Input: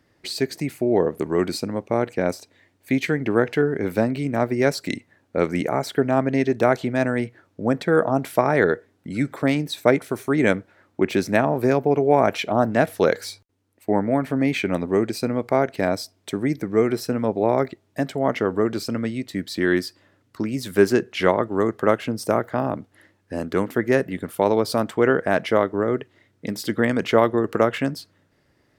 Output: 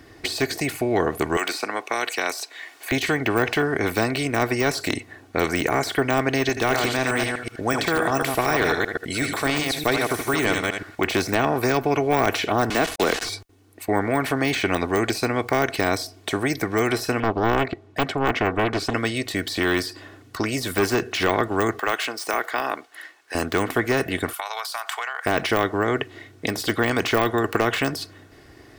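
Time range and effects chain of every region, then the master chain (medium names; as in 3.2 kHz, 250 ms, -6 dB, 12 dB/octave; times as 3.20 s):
1.37–2.92 s: high-pass 930 Hz + three bands compressed up and down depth 70%
6.49–11.07 s: chunks repeated in reverse 124 ms, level -7 dB + tilt shelf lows -4.5 dB, about 1.4 kHz + delay 77 ms -13.5 dB
12.70–13.29 s: high-pass 190 Hz 24 dB/octave + word length cut 6-bit, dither none + distance through air 57 m
17.20–18.94 s: low-pass 1.4 kHz 6 dB/octave + loudspeaker Doppler distortion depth 0.82 ms
21.79–23.35 s: median filter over 3 samples + high-pass 920 Hz
24.33–25.26 s: steep high-pass 830 Hz + compression 12:1, threshold -34 dBFS + treble shelf 5.6 kHz +5.5 dB
whole clip: comb 2.7 ms, depth 55%; de-esser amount 100%; spectrum-flattening compressor 2:1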